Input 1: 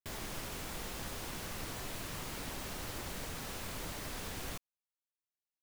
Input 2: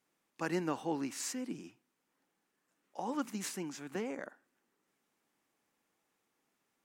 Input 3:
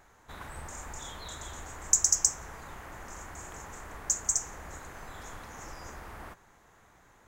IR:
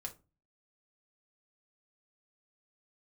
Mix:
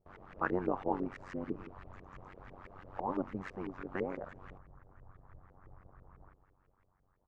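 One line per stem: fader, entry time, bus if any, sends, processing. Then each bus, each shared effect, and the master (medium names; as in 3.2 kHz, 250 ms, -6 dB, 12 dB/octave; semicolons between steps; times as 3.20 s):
-8.5 dB, 0.00 s, no send, no echo send, none
+2.0 dB, 0.00 s, no send, no echo send, none
-19.5 dB, 0.00 s, no send, echo send -13 dB, tilt EQ -3 dB/octave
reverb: none
echo: feedback delay 202 ms, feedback 58%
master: AM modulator 94 Hz, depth 90%; peaking EQ 1.2 kHz +5 dB 0.39 oct; LFO low-pass saw up 6 Hz 410–2200 Hz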